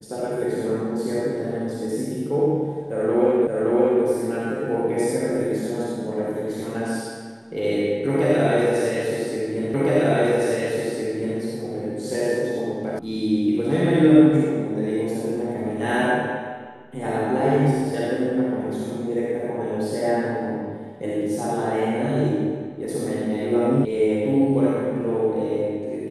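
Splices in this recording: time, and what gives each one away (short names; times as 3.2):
3.47 repeat of the last 0.57 s
9.74 repeat of the last 1.66 s
12.99 sound cut off
23.85 sound cut off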